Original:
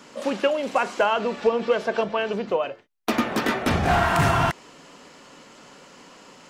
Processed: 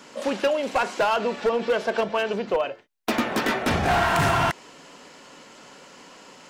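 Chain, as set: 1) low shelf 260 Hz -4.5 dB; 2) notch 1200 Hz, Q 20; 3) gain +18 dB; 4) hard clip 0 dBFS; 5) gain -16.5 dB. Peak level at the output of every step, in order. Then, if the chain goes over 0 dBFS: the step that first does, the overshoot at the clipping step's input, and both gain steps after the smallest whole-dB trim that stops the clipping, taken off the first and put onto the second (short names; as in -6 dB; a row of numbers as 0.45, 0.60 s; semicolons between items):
-10.5, -10.5, +7.5, 0.0, -16.5 dBFS; step 3, 7.5 dB; step 3 +10 dB, step 5 -8.5 dB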